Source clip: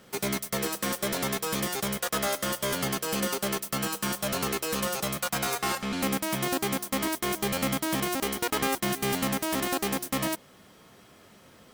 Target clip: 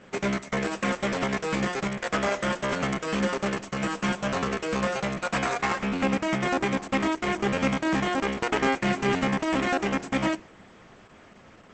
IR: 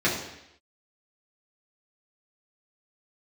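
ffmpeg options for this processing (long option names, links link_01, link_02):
-filter_complex "[0:a]highshelf=frequency=3000:width_type=q:width=1.5:gain=-6.5,asplit=2[link_01][link_02];[1:a]atrim=start_sample=2205,atrim=end_sample=6615[link_03];[link_02][link_03]afir=irnorm=-1:irlink=0,volume=-31dB[link_04];[link_01][link_04]amix=inputs=2:normalize=0,volume=4dB" -ar 48000 -c:a libopus -b:a 10k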